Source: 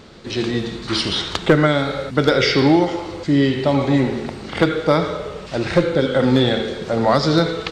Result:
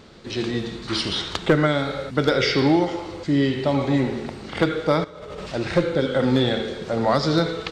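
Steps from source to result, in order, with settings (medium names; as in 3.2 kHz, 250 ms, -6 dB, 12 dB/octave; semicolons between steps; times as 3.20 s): 5.04–5.52 s: compressor with a negative ratio -33 dBFS, ratio -1; trim -4 dB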